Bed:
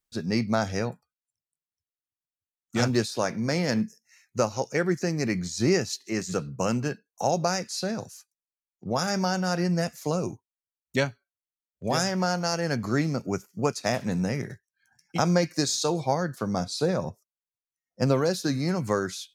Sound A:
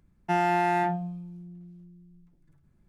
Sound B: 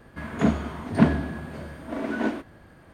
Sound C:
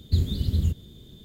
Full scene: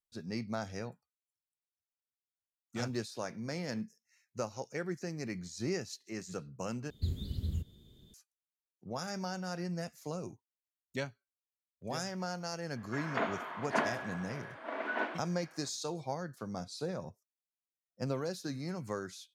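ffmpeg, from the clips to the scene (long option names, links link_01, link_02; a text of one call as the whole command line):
ffmpeg -i bed.wav -i cue0.wav -i cue1.wav -i cue2.wav -filter_complex "[0:a]volume=-12.5dB[link_01];[2:a]highpass=720,lowpass=3000[link_02];[link_01]asplit=2[link_03][link_04];[link_03]atrim=end=6.904[link_05];[3:a]atrim=end=1.24,asetpts=PTS-STARTPTS,volume=-12dB[link_06];[link_04]atrim=start=8.136[link_07];[link_02]atrim=end=2.93,asetpts=PTS-STARTPTS,volume=-1dB,afade=type=in:duration=0.004:curve=hsin,afade=type=out:start_time=2.926:duration=0.004:curve=hsin,adelay=12760[link_08];[link_05][link_06]acrossfade=duration=0.004:curve1=hsin:curve2=hsin[link_09];[link_09][link_07]acrossfade=duration=0.004:curve1=hsin:curve2=hsin[link_10];[link_10][link_08]amix=inputs=2:normalize=0" out.wav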